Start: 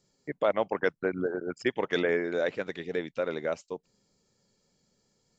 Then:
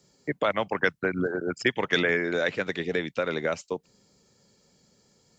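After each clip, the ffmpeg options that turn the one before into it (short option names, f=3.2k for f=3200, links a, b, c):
-filter_complex "[0:a]highpass=43,acrossover=split=190|1200[a][b][c];[b]acompressor=threshold=-35dB:ratio=6[d];[a][d][c]amix=inputs=3:normalize=0,volume=8.5dB"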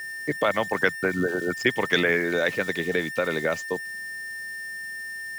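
-af "aeval=exprs='val(0)+0.02*sin(2*PI*1800*n/s)':c=same,aeval=exprs='val(0)*gte(abs(val(0)),0.01)':c=same,volume=2dB"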